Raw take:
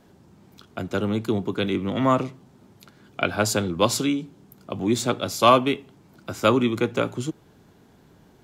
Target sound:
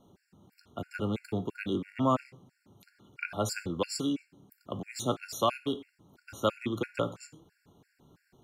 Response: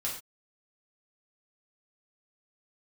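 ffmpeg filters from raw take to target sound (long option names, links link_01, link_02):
-filter_complex "[0:a]asplit=2[link_01][link_02];[1:a]atrim=start_sample=2205[link_03];[link_02][link_03]afir=irnorm=-1:irlink=0,volume=-14dB[link_04];[link_01][link_04]amix=inputs=2:normalize=0,alimiter=limit=-7.5dB:level=0:latency=1:release=378,afftfilt=real='re*gt(sin(2*PI*3*pts/sr)*(1-2*mod(floor(b*sr/1024/1400),2)),0)':imag='im*gt(sin(2*PI*3*pts/sr)*(1-2*mod(floor(b*sr/1024/1400),2)),0)':win_size=1024:overlap=0.75,volume=-7dB"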